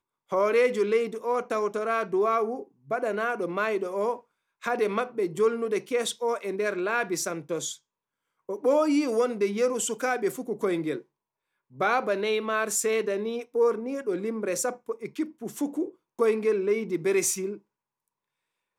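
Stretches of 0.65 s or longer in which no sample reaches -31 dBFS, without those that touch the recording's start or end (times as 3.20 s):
7.73–8.49 s
10.98–11.80 s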